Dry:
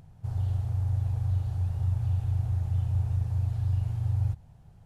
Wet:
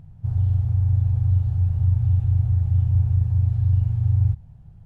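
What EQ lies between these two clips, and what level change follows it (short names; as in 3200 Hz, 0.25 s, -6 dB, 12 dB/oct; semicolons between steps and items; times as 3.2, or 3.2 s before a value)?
tone controls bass +11 dB, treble -6 dB; -2.5 dB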